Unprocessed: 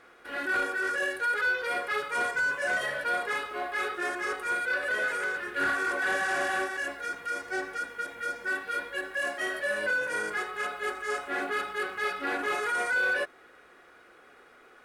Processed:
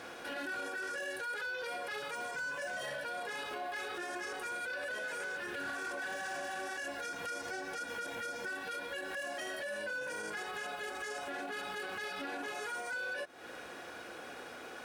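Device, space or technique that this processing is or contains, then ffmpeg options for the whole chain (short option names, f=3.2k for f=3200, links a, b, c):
broadcast voice chain: -af "highpass=75,equalizer=f=400:t=o:w=0.33:g=-7,equalizer=f=1.25k:t=o:w=0.33:g=-10,equalizer=f=2k:t=o:w=0.33:g=-8,deesser=0.95,acompressor=threshold=-44dB:ratio=6,equalizer=f=5.7k:t=o:w=0.5:g=4,alimiter=level_in=20.5dB:limit=-24dB:level=0:latency=1:release=71,volume=-20.5dB,volume=12dB"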